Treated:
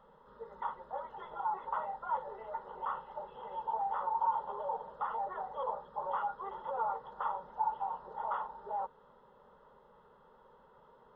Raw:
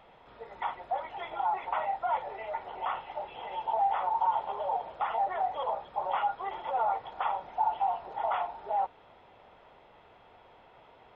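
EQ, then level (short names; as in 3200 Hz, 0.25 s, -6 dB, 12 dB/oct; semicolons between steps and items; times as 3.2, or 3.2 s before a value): high shelf 2400 Hz -10.5 dB; fixed phaser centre 470 Hz, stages 8; 0.0 dB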